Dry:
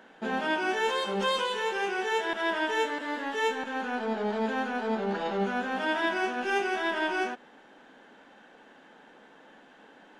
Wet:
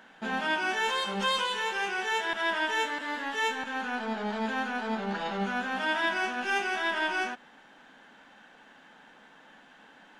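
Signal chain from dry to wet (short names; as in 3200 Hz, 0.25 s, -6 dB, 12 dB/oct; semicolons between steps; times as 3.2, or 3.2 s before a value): bell 410 Hz -9.5 dB 1.5 oct; gain +2.5 dB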